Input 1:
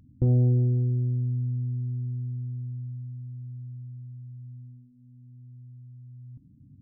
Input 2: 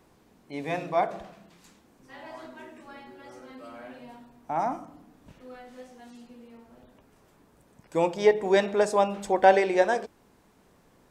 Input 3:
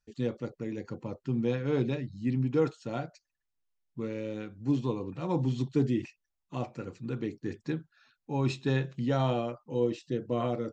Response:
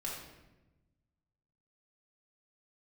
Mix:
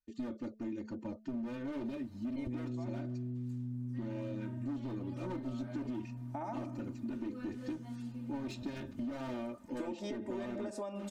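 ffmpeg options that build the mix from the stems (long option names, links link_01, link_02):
-filter_complex "[0:a]adelay=2250,volume=-1dB[link_01];[1:a]acompressor=threshold=-27dB:ratio=6,adelay=1850,volume=-6.5dB[link_02];[2:a]bandreject=frequency=217.3:width_type=h:width=4,bandreject=frequency=434.6:width_type=h:width=4,bandreject=frequency=651.9:width_type=h:width=4,agate=range=-9dB:threshold=-59dB:ratio=16:detection=peak,asoftclip=type=hard:threshold=-31.5dB,volume=-7dB[link_03];[link_01][link_02]amix=inputs=2:normalize=0,acompressor=threshold=-38dB:ratio=3,volume=0dB[link_04];[link_03][link_04]amix=inputs=2:normalize=0,equalizer=frequency=230:width=1.3:gain=8,aecho=1:1:3.3:0.99,acompressor=threshold=-36dB:ratio=6"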